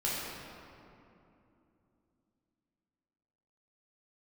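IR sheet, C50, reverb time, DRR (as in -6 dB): -2.0 dB, 2.9 s, -7.0 dB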